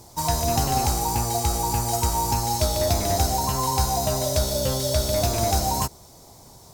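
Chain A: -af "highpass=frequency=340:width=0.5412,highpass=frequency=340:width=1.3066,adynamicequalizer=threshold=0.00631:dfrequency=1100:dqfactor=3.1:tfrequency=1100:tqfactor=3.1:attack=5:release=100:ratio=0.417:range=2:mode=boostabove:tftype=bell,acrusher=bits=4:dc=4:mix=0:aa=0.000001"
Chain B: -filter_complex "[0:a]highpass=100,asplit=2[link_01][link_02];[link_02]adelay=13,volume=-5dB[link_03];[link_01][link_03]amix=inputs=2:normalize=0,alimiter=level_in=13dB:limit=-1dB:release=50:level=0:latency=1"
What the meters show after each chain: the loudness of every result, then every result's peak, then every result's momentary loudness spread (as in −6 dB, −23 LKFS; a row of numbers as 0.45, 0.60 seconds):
−25.0, −10.5 LKFS; −11.0, −1.0 dBFS; 3, 2 LU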